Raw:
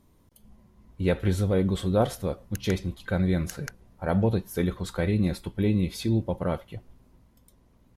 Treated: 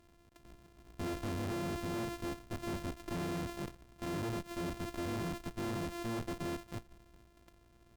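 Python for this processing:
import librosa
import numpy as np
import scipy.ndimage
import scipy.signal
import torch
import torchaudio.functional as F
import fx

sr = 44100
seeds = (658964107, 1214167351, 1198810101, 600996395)

y = np.r_[np.sort(x[:len(x) // 128 * 128].reshape(-1, 128), axis=1).ravel(), x[len(x) // 128 * 128:]]
y = fx.tube_stage(y, sr, drive_db=37.0, bias=0.75)
y = y * librosa.db_to_amplitude(1.0)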